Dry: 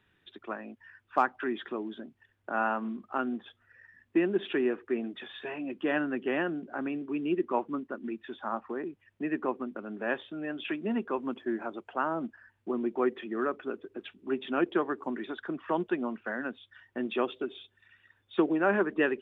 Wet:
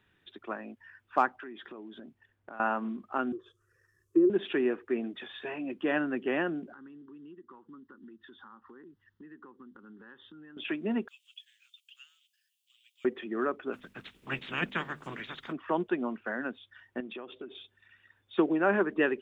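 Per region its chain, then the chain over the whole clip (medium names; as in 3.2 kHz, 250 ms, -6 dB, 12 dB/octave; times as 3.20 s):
1.34–2.60 s: compression 4:1, threshold -43 dBFS + tape noise reduction on one side only decoder only
3.32–4.30 s: low-pass that closes with the level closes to 910 Hz, closed at -27 dBFS + FFT filter 160 Hz 0 dB, 220 Hz -29 dB, 360 Hz +8 dB, 570 Hz -7 dB, 800 Hz -28 dB, 1.1 kHz 0 dB, 2 kHz -18 dB, 3.8 kHz -7 dB, 6.2 kHz +10 dB
6.72–10.57 s: compression 4:1, threshold -47 dBFS + static phaser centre 2.4 kHz, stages 6
11.08–13.05 s: elliptic high-pass 2.9 kHz, stop band 80 dB + tilt EQ +3.5 dB/octave
13.72–15.51 s: spectral peaks clipped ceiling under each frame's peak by 26 dB + peaking EQ 660 Hz -10.5 dB 1.9 oct + hum notches 50/100/150/200/250 Hz
17.00–17.55 s: compression 12:1, threshold -37 dBFS + distance through air 110 m
whole clip: none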